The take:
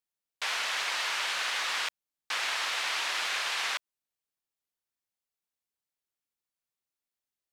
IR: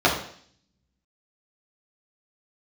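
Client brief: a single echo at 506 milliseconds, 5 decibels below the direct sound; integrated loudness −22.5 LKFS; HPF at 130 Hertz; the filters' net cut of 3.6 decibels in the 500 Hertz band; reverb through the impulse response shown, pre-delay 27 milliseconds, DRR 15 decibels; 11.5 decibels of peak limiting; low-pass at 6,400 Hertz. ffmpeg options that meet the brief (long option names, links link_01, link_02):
-filter_complex "[0:a]highpass=130,lowpass=6400,equalizer=frequency=500:width_type=o:gain=-5,alimiter=level_in=6dB:limit=-24dB:level=0:latency=1,volume=-6dB,aecho=1:1:506:0.562,asplit=2[link_01][link_02];[1:a]atrim=start_sample=2205,adelay=27[link_03];[link_02][link_03]afir=irnorm=-1:irlink=0,volume=-35dB[link_04];[link_01][link_04]amix=inputs=2:normalize=0,volume=14.5dB"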